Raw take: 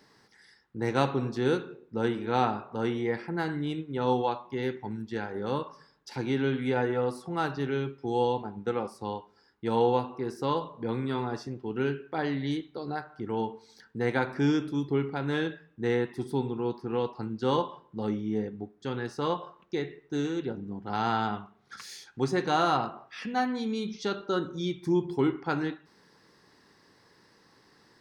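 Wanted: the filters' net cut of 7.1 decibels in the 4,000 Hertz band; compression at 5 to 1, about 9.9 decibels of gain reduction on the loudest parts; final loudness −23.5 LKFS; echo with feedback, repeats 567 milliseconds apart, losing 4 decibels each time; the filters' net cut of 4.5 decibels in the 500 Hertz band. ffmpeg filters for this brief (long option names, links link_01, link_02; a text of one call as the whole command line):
ffmpeg -i in.wav -af "equalizer=frequency=500:width_type=o:gain=-5.5,equalizer=frequency=4000:width_type=o:gain=-9,acompressor=threshold=-34dB:ratio=5,aecho=1:1:567|1134|1701|2268|2835|3402|3969|4536|5103:0.631|0.398|0.25|0.158|0.0994|0.0626|0.0394|0.0249|0.0157,volume=14dB" out.wav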